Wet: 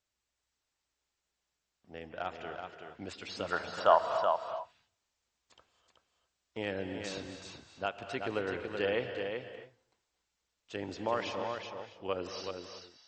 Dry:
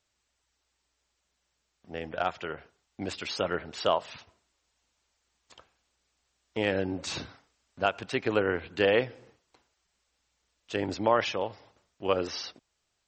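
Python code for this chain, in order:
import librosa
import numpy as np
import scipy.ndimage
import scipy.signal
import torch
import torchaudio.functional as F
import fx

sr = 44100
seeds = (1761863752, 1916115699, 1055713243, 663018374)

y = fx.band_shelf(x, sr, hz=1000.0, db=12.5, octaves=1.7, at=(3.52, 4.06))
y = y + 10.0 ** (-6.0 / 20.0) * np.pad(y, (int(378 * sr / 1000.0), 0))[:len(y)]
y = fx.rev_gated(y, sr, seeds[0], gate_ms=300, shape='rising', drr_db=8.5)
y = F.gain(torch.from_numpy(y), -8.5).numpy()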